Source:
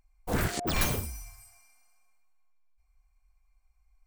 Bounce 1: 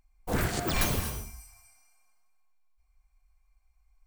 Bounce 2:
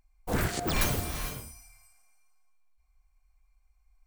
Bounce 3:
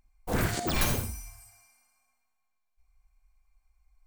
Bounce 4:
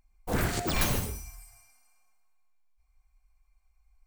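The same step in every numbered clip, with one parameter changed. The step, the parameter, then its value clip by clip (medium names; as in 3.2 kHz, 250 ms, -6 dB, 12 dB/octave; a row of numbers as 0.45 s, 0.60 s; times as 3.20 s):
gated-style reverb, gate: 270 ms, 480 ms, 100 ms, 170 ms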